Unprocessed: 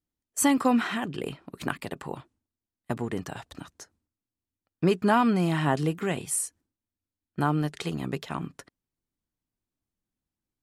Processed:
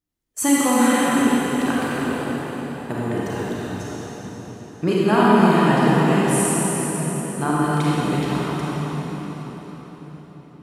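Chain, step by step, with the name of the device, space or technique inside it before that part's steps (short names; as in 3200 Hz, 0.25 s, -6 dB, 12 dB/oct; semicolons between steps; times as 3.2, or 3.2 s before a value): cathedral (reverb RT60 5.2 s, pre-delay 31 ms, DRR -8.5 dB)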